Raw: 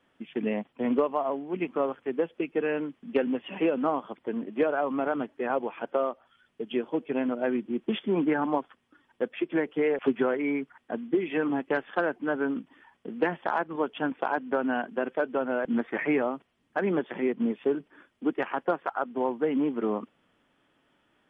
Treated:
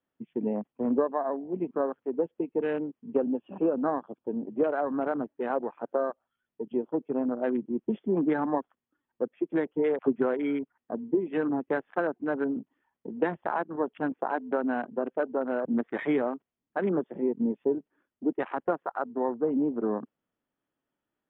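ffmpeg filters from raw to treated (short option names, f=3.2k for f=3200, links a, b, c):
-filter_complex "[0:a]asettb=1/sr,asplit=3[a][b][c];[a]atrim=end=3.224[d];[b]atrim=start=3.22:end=4.46,asetpts=PTS-STARTPTS,afade=t=in:d=0.004:c=qsin,afade=t=out:st=1.236:d=0.004:c=qsin,asuperstop=centerf=2000:order=4:qfactor=4.2[e];[c]atrim=start=4.456[f];[d][e]acrossfade=d=0.004:c1=hsin:c2=qsin[g];[g][f]acrossfade=d=0.004:c1=qsin:c2=hsin,afwtdn=0.0178,highshelf=f=2.1k:g=-10.5"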